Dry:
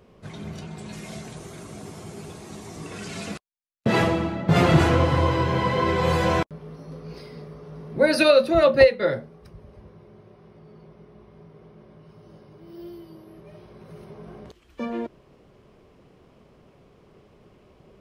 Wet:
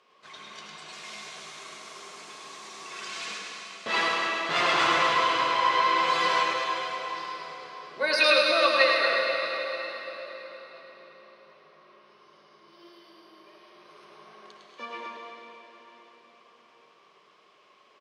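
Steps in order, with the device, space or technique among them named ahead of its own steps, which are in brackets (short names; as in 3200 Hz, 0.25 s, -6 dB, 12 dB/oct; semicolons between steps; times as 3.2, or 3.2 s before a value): station announcement (BPF 400–4700 Hz; bell 1100 Hz +11 dB 0.24 oct; loudspeakers at several distances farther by 36 m -4 dB, 81 m -10 dB; reverb RT60 4.3 s, pre-delay 75 ms, DRR 1 dB); tilt shelf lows -9.5 dB, about 1400 Hz; gain -4 dB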